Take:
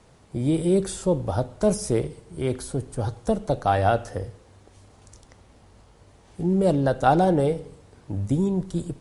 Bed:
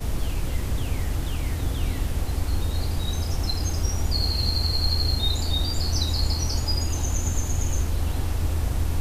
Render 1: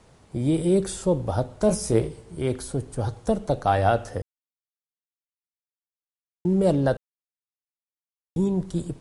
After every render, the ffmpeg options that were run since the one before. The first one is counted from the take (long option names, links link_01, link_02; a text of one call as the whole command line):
ffmpeg -i in.wav -filter_complex "[0:a]asettb=1/sr,asplit=3[link_01][link_02][link_03];[link_01]atrim=end=1.674[link_04];[link_02]atrim=start=1.67:end=2.35,asetpts=PTS-STARTPTS,afade=type=in:duration=0.004:curve=qsin,afade=type=out:start_time=0.676:duration=0.004:curve=qsin,asplit=2[link_05][link_06];[link_06]adelay=18,volume=-6dB[link_07];[link_05][link_07]amix=inputs=2:normalize=0,atrim=end_sample=29988[link_08];[link_03]atrim=start=2.346[link_09];[link_04][link_08]acrossfade=duration=0.004:curve1=hsin:curve2=qsin[link_10];[link_10][link_09]acrossfade=duration=0.004:curve1=qsin:curve2=hsin,asplit=5[link_11][link_12][link_13][link_14][link_15];[link_11]atrim=end=4.22,asetpts=PTS-STARTPTS,afade=type=out:start_time=4.216:duration=0.004:curve=hsin[link_16];[link_12]atrim=start=4.22:end=6.45,asetpts=PTS-STARTPTS,volume=0[link_17];[link_13]atrim=start=6.45:end=6.97,asetpts=PTS-STARTPTS,afade=type=in:duration=0.004:curve=hsin,afade=type=out:start_time=0.516:duration=0.004:curve=hsin[link_18];[link_14]atrim=start=6.97:end=8.36,asetpts=PTS-STARTPTS,volume=0[link_19];[link_15]atrim=start=8.36,asetpts=PTS-STARTPTS,afade=type=in:duration=0.004:curve=hsin[link_20];[link_16][link_17][link_18][link_19][link_20]concat=n=5:v=0:a=1" out.wav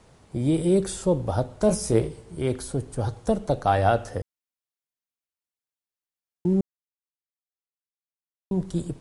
ffmpeg -i in.wav -filter_complex "[0:a]asplit=3[link_01][link_02][link_03];[link_01]atrim=end=6.61,asetpts=PTS-STARTPTS,afade=type=out:start_time=6.606:duration=0.004:curve=hsin[link_04];[link_02]atrim=start=6.61:end=8.51,asetpts=PTS-STARTPTS,volume=0[link_05];[link_03]atrim=start=8.51,asetpts=PTS-STARTPTS,afade=type=in:duration=0.004:curve=hsin[link_06];[link_04][link_05][link_06]concat=n=3:v=0:a=1" out.wav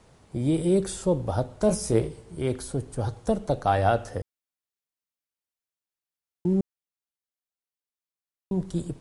ffmpeg -i in.wav -af "volume=-1.5dB" out.wav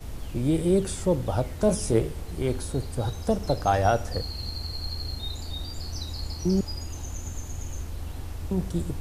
ffmpeg -i in.wav -i bed.wav -filter_complex "[1:a]volume=-10dB[link_01];[0:a][link_01]amix=inputs=2:normalize=0" out.wav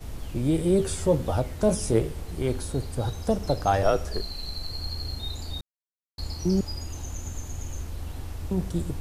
ffmpeg -i in.wav -filter_complex "[0:a]asettb=1/sr,asplit=3[link_01][link_02][link_03];[link_01]atrim=end=0.784[link_04];[link_02]atrim=start=0.78:end=1.39,asetpts=PTS-STARTPTS,afade=type=in:duration=0.004:curve=qsin,afade=type=out:start_time=0.606:duration=0.004:curve=qsin,asplit=2[link_05][link_06];[link_06]adelay=13,volume=-4dB[link_07];[link_05][link_07]amix=inputs=2:normalize=0,atrim=end_sample=26901[link_08];[link_03]atrim=start=1.386[link_09];[link_04][link_08]acrossfade=duration=0.004:curve1=hsin:curve2=qsin[link_10];[link_10][link_09]acrossfade=duration=0.004:curve1=qsin:curve2=hsin,asettb=1/sr,asplit=3[link_11][link_12][link_13];[link_11]atrim=end=3.834[link_14];[link_12]atrim=start=3.83:end=4.7,asetpts=PTS-STARTPTS,afade=type=in:duration=0.004:curve=qsin,afade=type=out:start_time=0.866:duration=0.004:curve=qsin,afreqshift=-86[link_15];[link_13]atrim=start=4.696[link_16];[link_14][link_15]acrossfade=duration=0.004:curve1=hsin:curve2=qsin[link_17];[link_17][link_16]acrossfade=duration=0.004:curve1=qsin:curve2=hsin,asplit=3[link_18][link_19][link_20];[link_18]atrim=end=5.61,asetpts=PTS-STARTPTS,afade=type=out:start_time=5.606:duration=0.004:curve=hsin[link_21];[link_19]atrim=start=5.61:end=6.18,asetpts=PTS-STARTPTS,volume=0[link_22];[link_20]atrim=start=6.18,asetpts=PTS-STARTPTS,afade=type=in:duration=0.004:curve=hsin[link_23];[link_21][link_22][link_23]concat=n=3:v=0:a=1" out.wav